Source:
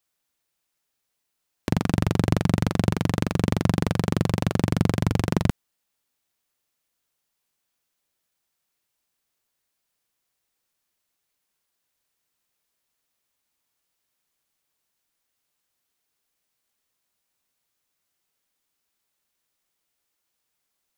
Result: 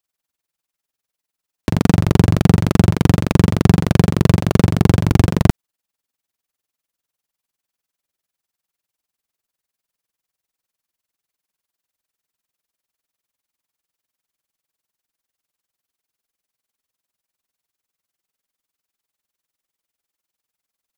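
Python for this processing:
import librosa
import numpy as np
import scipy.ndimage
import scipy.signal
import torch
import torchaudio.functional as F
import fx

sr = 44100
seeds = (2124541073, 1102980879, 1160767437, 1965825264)

y = x * (1.0 - 0.83 / 2.0 + 0.83 / 2.0 * np.cos(2.0 * np.pi * 20.0 * (np.arange(len(x)) / sr)))
y = fx.leveller(y, sr, passes=3)
y = y * 10.0 ** (6.0 / 20.0)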